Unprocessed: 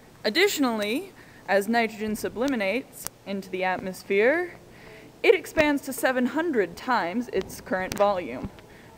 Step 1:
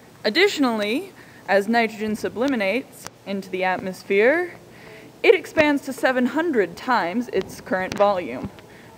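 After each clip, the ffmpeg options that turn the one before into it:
-filter_complex "[0:a]acrossover=split=5900[a][b];[b]acompressor=threshold=-46dB:ratio=4:attack=1:release=60[c];[a][c]amix=inputs=2:normalize=0,highpass=80,volume=4dB"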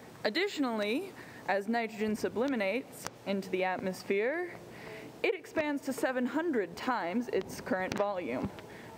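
-af "equalizer=f=630:w=0.3:g=3,acompressor=threshold=-22dB:ratio=12,volume=-5.5dB"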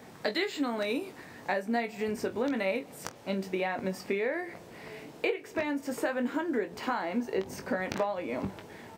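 -af "aecho=1:1:21|47:0.422|0.126"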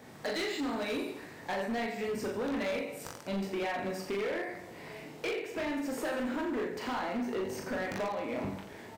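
-af "aecho=1:1:40|86|138.9|199.7|269.7:0.631|0.398|0.251|0.158|0.1,asoftclip=type=hard:threshold=-27.5dB,volume=-2.5dB"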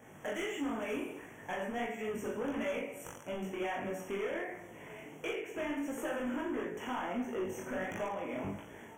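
-af "flanger=delay=17.5:depth=6.8:speed=1.5,asuperstop=centerf=4400:order=20:qfactor=2"

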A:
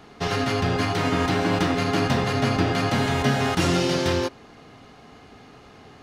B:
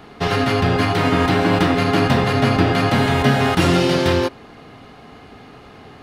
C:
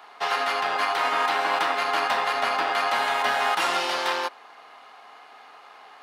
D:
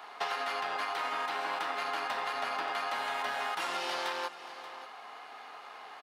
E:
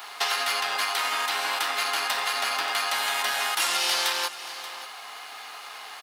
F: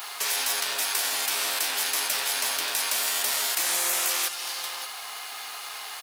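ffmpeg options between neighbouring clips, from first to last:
-af "equalizer=f=6.3k:t=o:w=0.75:g=-7,volume=6dB"
-af "aeval=exprs='if(lt(val(0),0),0.708*val(0),val(0))':c=same,highpass=f=890:t=q:w=1.7,volume=-3.5dB"
-af "acompressor=threshold=-31dB:ratio=10,aecho=1:1:581:0.188"
-af "crystalizer=i=9:c=0"
-af "crystalizer=i=2:c=0,afftfilt=real='re*lt(hypot(re,im),0.112)':imag='im*lt(hypot(re,im),0.112)':win_size=1024:overlap=0.75"

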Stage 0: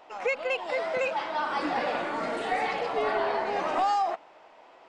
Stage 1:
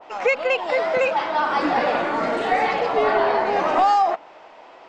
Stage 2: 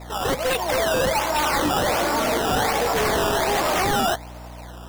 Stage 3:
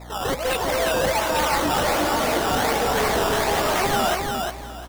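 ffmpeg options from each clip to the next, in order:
-af "lowpass=f=7.6k:w=0.5412,lowpass=f=7.6k:w=1.3066,adynamicequalizer=threshold=0.0112:dfrequency=2000:dqfactor=0.7:tfrequency=2000:tqfactor=0.7:attack=5:release=100:ratio=0.375:range=1.5:mode=cutabove:tftype=highshelf,volume=8.5dB"
-af "acrusher=samples=14:mix=1:aa=0.000001:lfo=1:lforange=14:lforate=1.3,aeval=exprs='0.126*(abs(mod(val(0)/0.126+3,4)-2)-1)':c=same,aeval=exprs='val(0)+0.01*(sin(2*PI*60*n/s)+sin(2*PI*2*60*n/s)/2+sin(2*PI*3*60*n/s)/3+sin(2*PI*4*60*n/s)/4+sin(2*PI*5*60*n/s)/5)':c=same,volume=2dB"
-af "aecho=1:1:353|706|1059:0.631|0.145|0.0334,volume=-1.5dB"

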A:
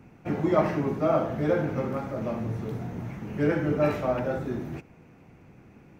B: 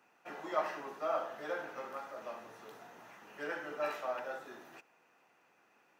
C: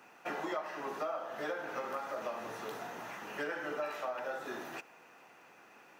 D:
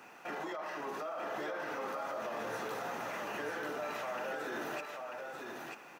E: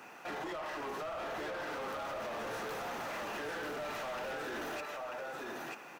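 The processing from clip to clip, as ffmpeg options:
-af "highpass=860,bandreject=f=2.2k:w=7.6,volume=-4.5dB"
-af "acompressor=threshold=-45dB:ratio=10,volume=10.5dB"
-af "alimiter=level_in=12.5dB:limit=-24dB:level=0:latency=1:release=22,volume=-12.5dB,aecho=1:1:940:0.631,volume=4dB"
-af "asoftclip=type=hard:threshold=-39.5dB,volume=2.5dB"

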